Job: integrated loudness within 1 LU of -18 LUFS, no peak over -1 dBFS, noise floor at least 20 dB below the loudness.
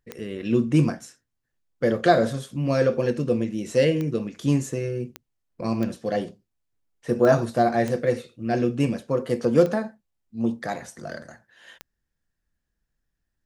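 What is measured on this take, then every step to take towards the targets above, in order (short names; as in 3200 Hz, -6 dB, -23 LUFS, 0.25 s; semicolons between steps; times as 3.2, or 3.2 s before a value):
clicks 8; loudness -24.0 LUFS; peak -5.5 dBFS; loudness target -18.0 LUFS
-> de-click; gain +6 dB; limiter -1 dBFS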